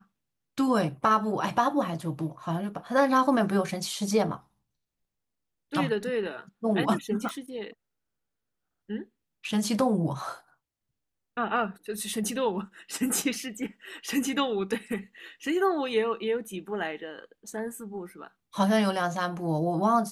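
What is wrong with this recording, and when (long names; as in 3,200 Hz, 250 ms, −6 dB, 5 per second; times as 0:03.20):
0:07.29: click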